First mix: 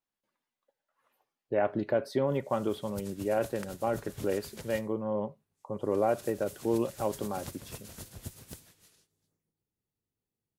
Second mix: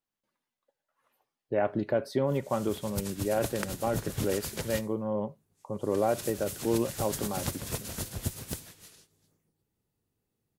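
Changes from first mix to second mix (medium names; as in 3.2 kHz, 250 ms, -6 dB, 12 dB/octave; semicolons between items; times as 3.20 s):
speech: add tone controls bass +3 dB, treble +2 dB; background +9.5 dB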